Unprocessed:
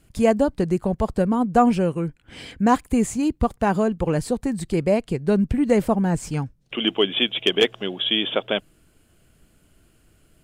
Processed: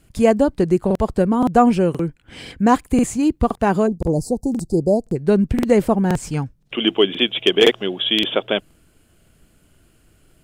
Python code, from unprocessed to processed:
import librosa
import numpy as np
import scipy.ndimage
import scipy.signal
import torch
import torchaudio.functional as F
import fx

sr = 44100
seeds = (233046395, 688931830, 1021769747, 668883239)

y = fx.ellip_bandstop(x, sr, low_hz=810.0, high_hz=5000.0, order=3, stop_db=40, at=(3.86, 5.15), fade=0.02)
y = fx.dynamic_eq(y, sr, hz=360.0, q=2.7, threshold_db=-31.0, ratio=4.0, max_db=4)
y = fx.buffer_crackle(y, sr, first_s=0.86, period_s=0.52, block=2048, kind='repeat')
y = F.gain(torch.from_numpy(y), 2.5).numpy()